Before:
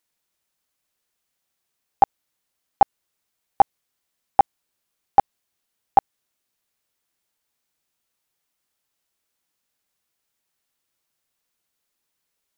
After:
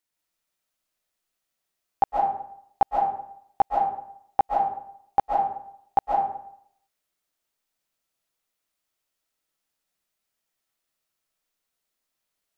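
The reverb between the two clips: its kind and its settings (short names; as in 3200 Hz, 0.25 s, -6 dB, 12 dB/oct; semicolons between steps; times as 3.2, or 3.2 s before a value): digital reverb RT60 0.69 s, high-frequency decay 0.65×, pre-delay 0.1 s, DRR -2 dB; gain -6.5 dB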